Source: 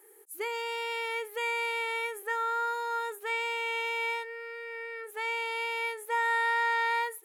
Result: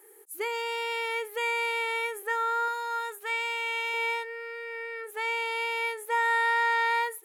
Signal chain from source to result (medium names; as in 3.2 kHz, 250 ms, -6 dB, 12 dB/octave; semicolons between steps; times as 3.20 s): 2.68–3.94 s: bass shelf 470 Hz -10.5 dB; trim +2.5 dB